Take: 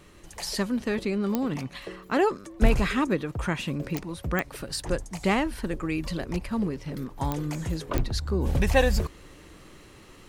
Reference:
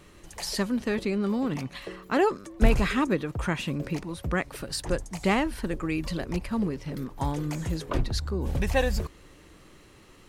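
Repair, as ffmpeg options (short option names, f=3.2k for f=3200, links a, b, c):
-af "adeclick=t=4,asetnsamples=n=441:p=0,asendcmd='8.29 volume volume -3.5dB',volume=0dB"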